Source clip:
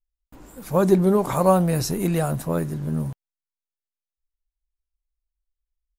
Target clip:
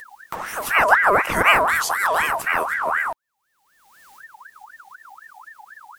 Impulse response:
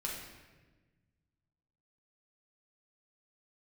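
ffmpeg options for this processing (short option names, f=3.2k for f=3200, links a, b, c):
-af "acompressor=mode=upward:threshold=-19dB:ratio=2.5,aeval=exprs='val(0)*sin(2*PI*1300*n/s+1300*0.4/4*sin(2*PI*4*n/s))':c=same,volume=4.5dB"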